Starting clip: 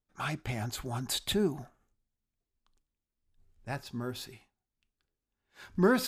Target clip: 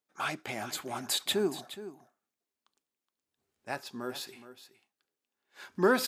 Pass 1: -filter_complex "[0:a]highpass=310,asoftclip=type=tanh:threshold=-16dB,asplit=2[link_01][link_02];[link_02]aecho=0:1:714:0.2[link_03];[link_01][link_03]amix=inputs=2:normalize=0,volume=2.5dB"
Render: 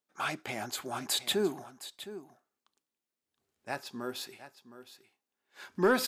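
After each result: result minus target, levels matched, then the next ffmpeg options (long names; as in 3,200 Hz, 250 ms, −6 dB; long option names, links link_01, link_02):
echo 294 ms late; soft clipping: distortion +15 dB
-filter_complex "[0:a]highpass=310,asoftclip=type=tanh:threshold=-16dB,asplit=2[link_01][link_02];[link_02]aecho=0:1:420:0.2[link_03];[link_01][link_03]amix=inputs=2:normalize=0,volume=2.5dB"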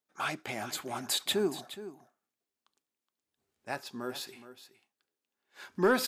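soft clipping: distortion +15 dB
-filter_complex "[0:a]highpass=310,asoftclip=type=tanh:threshold=-7.5dB,asplit=2[link_01][link_02];[link_02]aecho=0:1:420:0.2[link_03];[link_01][link_03]amix=inputs=2:normalize=0,volume=2.5dB"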